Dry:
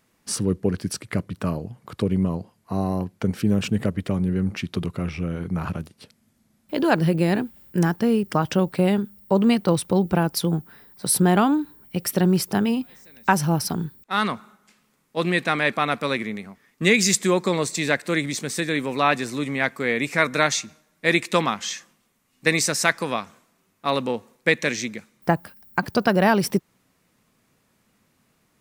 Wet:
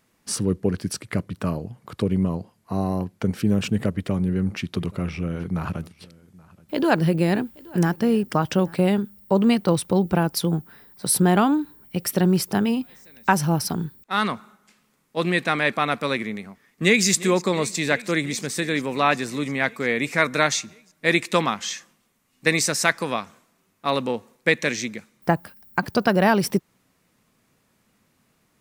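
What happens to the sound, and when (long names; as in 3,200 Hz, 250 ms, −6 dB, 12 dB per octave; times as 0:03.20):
0:03.94–0:08.85: single-tap delay 827 ms −23.5 dB
0:16.43–0:17.06: delay throw 350 ms, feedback 80%, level −17.5 dB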